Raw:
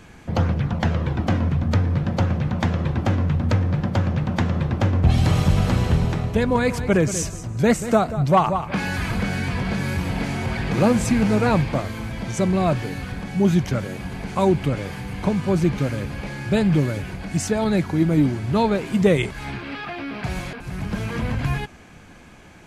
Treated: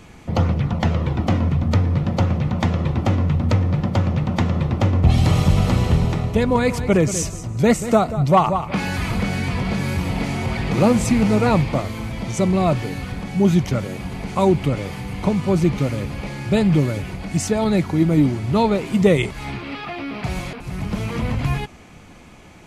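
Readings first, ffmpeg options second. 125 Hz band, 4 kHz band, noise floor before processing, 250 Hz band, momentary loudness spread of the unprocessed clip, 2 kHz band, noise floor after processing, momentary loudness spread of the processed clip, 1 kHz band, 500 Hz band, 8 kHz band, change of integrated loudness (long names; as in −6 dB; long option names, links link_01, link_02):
+2.0 dB, +2.0 dB, −45 dBFS, +2.0 dB, 11 LU, 0.0 dB, −43 dBFS, 11 LU, +2.0 dB, +2.0 dB, +2.0 dB, +2.0 dB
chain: -af "bandreject=frequency=1600:width=6.5,volume=2dB"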